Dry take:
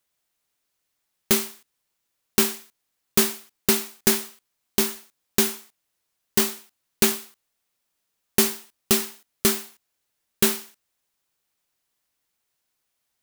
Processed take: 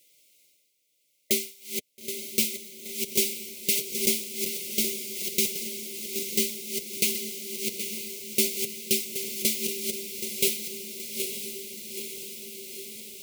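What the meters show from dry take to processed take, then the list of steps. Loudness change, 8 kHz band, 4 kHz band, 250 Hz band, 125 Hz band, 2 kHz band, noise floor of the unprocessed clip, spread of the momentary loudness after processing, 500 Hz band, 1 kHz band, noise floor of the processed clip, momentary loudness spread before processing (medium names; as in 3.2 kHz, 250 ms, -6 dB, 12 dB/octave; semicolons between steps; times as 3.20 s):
-5.0 dB, -1.5 dB, -1.5 dB, -7.0 dB, -9.0 dB, -4.5 dB, -78 dBFS, 11 LU, -5.0 dB, under -40 dB, -70 dBFS, 14 LU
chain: backward echo that repeats 387 ms, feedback 64%, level -7 dB; high-pass 380 Hz 6 dB/octave; reverse; upward compressor, threshold -39 dBFS; reverse; flange 0.56 Hz, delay 5.8 ms, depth 4.6 ms, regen -22%; brick-wall FIR band-stop 620–2000 Hz; on a send: echo that smears into a reverb 911 ms, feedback 70%, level -9 dB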